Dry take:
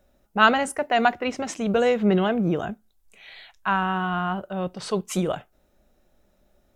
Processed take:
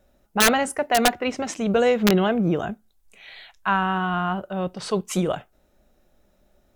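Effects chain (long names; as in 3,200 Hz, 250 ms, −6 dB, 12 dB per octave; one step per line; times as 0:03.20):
pitch vibrato 1.1 Hz 8.7 cents
wrap-around overflow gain 10.5 dB
level +1.5 dB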